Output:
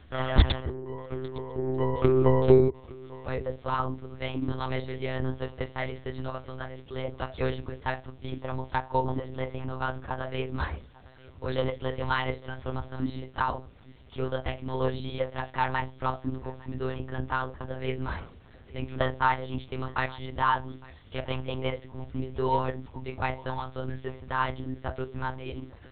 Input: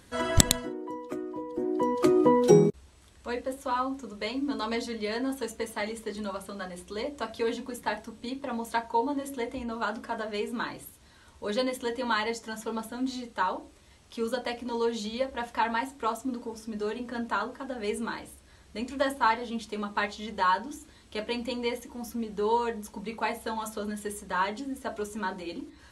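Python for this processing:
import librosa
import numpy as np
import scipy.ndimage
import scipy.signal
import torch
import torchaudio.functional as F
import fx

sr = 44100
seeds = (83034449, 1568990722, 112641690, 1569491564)

p1 = x + fx.echo_single(x, sr, ms=855, db=-22.0, dry=0)
p2 = fx.lpc_monotone(p1, sr, seeds[0], pitch_hz=130.0, order=10)
y = fx.peak_eq(p2, sr, hz=73.0, db=12.5, octaves=0.78)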